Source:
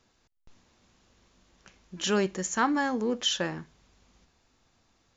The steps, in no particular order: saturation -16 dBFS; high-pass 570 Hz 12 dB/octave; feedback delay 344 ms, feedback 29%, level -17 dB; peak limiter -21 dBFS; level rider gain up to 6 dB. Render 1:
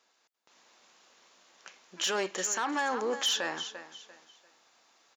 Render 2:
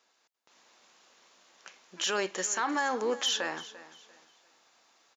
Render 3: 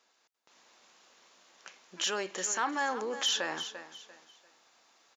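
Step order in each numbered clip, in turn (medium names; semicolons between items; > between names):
feedback delay > level rider > saturation > high-pass > peak limiter; high-pass > saturation > level rider > peak limiter > feedback delay; saturation > feedback delay > level rider > peak limiter > high-pass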